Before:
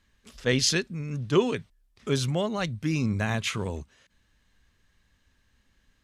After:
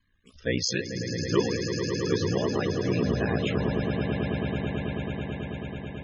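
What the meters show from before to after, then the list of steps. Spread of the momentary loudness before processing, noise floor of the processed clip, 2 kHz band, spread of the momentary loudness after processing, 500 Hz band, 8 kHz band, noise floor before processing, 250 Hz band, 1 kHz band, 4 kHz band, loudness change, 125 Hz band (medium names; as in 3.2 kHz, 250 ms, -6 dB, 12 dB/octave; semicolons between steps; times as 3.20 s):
11 LU, -56 dBFS, -0.5 dB, 8 LU, +2.0 dB, -4.0 dB, -69 dBFS, +2.5 dB, 0.0 dB, -2.5 dB, -1.0 dB, +1.5 dB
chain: ring modulator 30 Hz; echo with a slow build-up 109 ms, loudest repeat 8, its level -9 dB; loudest bins only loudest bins 64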